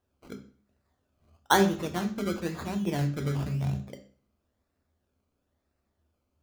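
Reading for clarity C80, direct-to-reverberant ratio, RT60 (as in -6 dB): 16.0 dB, 5.5 dB, 0.45 s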